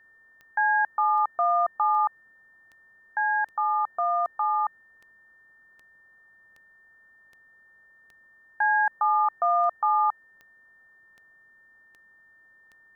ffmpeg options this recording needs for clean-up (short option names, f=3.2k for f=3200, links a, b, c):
-af "adeclick=t=4,bandreject=f=1.8k:w=30,agate=range=-21dB:threshold=-50dB"